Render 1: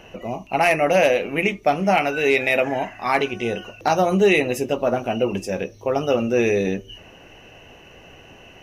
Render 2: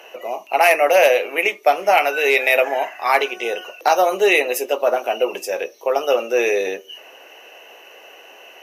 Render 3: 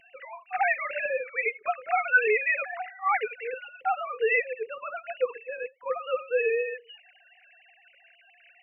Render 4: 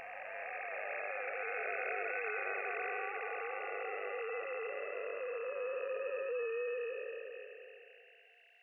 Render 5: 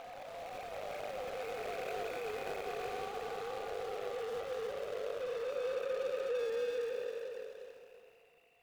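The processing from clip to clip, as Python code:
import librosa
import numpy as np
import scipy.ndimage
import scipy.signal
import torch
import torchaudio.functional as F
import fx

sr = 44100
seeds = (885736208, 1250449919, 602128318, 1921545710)

y1 = scipy.signal.sosfilt(scipy.signal.butter(4, 430.0, 'highpass', fs=sr, output='sos'), x)
y1 = fx.peak_eq(y1, sr, hz=13000.0, db=14.0, octaves=0.31)
y1 = y1 * librosa.db_to_amplitude(4.0)
y2 = fx.sine_speech(y1, sr)
y2 = fx.fixed_phaser(y2, sr, hz=1500.0, stages=4)
y3 = fx.spec_blur(y2, sr, span_ms=1490.0)
y4 = scipy.ndimage.median_filter(y3, 25, mode='constant')
y4 = y4 + 10.0 ** (-9.5 / 20.0) * np.pad(y4, (int(339 * sr / 1000.0), 0))[:len(y4)]
y4 = y4 * librosa.db_to_amplitude(3.0)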